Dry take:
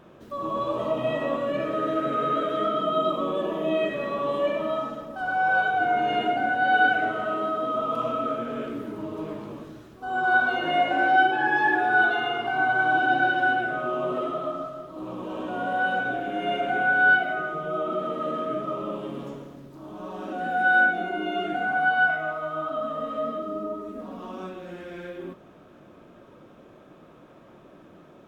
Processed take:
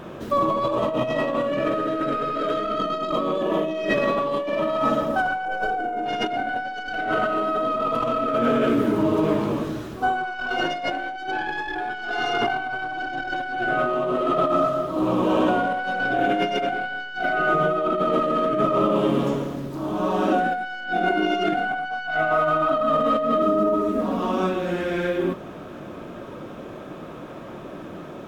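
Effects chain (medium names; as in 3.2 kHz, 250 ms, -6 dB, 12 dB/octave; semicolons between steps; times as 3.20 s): tracing distortion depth 0.093 ms; 5.45–6.06 s: ten-band graphic EQ 125 Hz -10 dB, 250 Hz +4 dB, 500 Hz +5 dB, 1 kHz -6 dB, 2 kHz -5 dB, 4 kHz -11 dB; compressor with a negative ratio -32 dBFS, ratio -1; trim +8 dB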